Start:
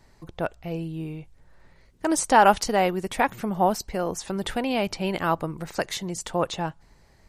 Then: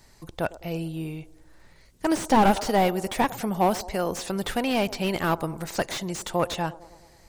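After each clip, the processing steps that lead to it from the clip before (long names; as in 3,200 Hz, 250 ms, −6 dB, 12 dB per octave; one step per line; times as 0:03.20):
high-shelf EQ 3,500 Hz +11 dB
delay with a band-pass on its return 104 ms, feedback 62%, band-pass 480 Hz, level −17 dB
slew-rate limiting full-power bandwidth 130 Hz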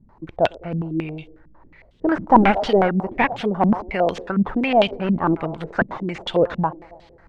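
low-pass on a step sequencer 11 Hz 210–3,300 Hz
level +2 dB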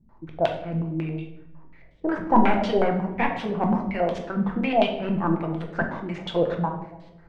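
rectangular room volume 220 cubic metres, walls mixed, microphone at 0.79 metres
level −7 dB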